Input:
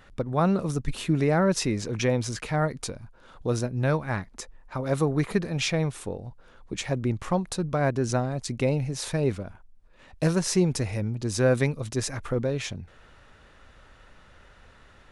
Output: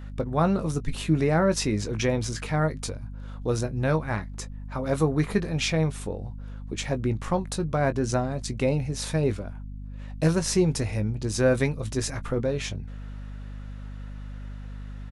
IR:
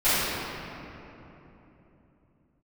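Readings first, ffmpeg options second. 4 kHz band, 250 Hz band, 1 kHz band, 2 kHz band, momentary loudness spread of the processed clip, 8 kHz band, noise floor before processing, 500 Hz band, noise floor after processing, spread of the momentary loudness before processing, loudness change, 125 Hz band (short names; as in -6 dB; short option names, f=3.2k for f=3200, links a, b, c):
+0.5 dB, +0.5 dB, +0.5 dB, +0.5 dB, 17 LU, +0.5 dB, -54 dBFS, +0.5 dB, -38 dBFS, 13 LU, +0.5 dB, +0.5 dB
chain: -filter_complex "[0:a]aeval=exprs='val(0)+0.0126*(sin(2*PI*50*n/s)+sin(2*PI*2*50*n/s)/2+sin(2*PI*3*50*n/s)/3+sin(2*PI*4*50*n/s)/4+sin(2*PI*5*50*n/s)/5)':c=same,asplit=2[a][b];[b]adelay=19,volume=-10.5dB[c];[a][c]amix=inputs=2:normalize=0"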